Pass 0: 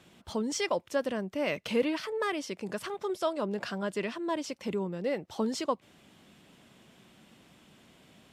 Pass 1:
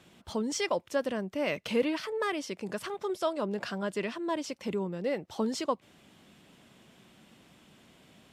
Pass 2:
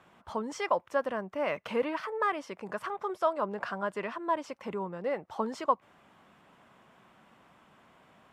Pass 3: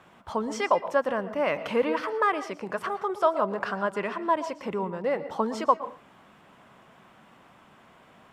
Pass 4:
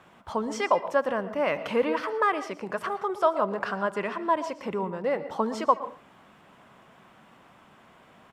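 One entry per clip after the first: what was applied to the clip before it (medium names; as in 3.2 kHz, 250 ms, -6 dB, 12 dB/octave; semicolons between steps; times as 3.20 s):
no audible change
FFT filter 330 Hz 0 dB, 1.1 kHz +13 dB, 4 kHz -5 dB; trim -5.5 dB
reverberation RT60 0.35 s, pre-delay 112 ms, DRR 13.5 dB; trim +5 dB
delay 72 ms -23 dB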